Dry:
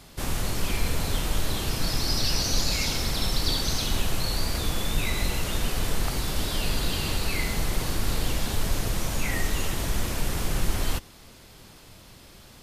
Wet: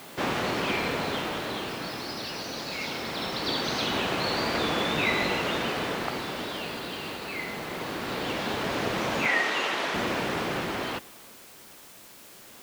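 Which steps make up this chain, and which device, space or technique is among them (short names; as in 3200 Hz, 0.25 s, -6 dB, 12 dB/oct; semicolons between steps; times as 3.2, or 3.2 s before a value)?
shortwave radio (BPF 260–2900 Hz; tremolo 0.21 Hz, depth 69%; white noise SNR 20 dB); 9.26–9.94 weighting filter A; gain +8.5 dB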